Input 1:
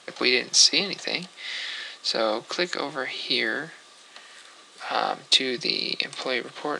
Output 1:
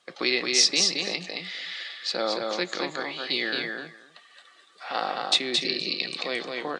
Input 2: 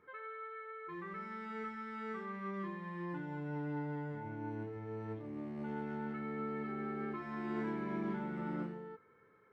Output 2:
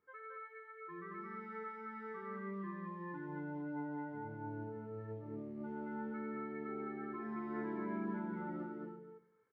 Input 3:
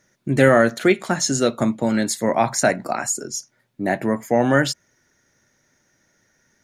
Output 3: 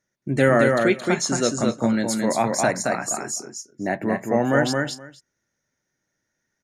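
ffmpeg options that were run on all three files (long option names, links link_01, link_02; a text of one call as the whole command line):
ffmpeg -i in.wav -filter_complex "[0:a]asplit=2[link_01][link_02];[link_02]aecho=0:1:221:0.668[link_03];[link_01][link_03]amix=inputs=2:normalize=0,afftdn=noise_reduction=12:noise_floor=-45,asplit=2[link_04][link_05];[link_05]aecho=0:1:253:0.126[link_06];[link_04][link_06]amix=inputs=2:normalize=0,volume=-3.5dB" out.wav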